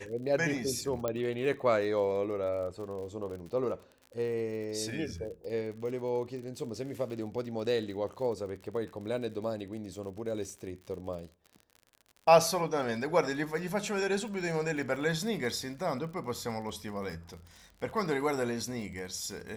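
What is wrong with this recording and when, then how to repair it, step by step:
surface crackle 51 per second −41 dBFS
0:01.08: click −18 dBFS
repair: click removal

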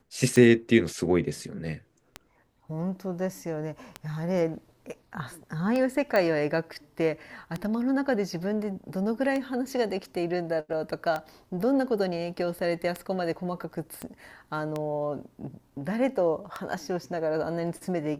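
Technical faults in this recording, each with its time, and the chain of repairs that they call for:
scratch tick 33 1/3 rpm −17 dBFS
0:06.16: click −14 dBFS
0:14.02: click −22 dBFS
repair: click removal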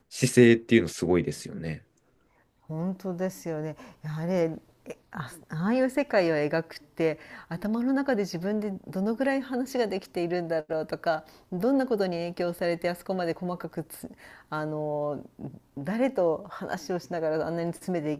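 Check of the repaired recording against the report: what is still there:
0:14.02: click

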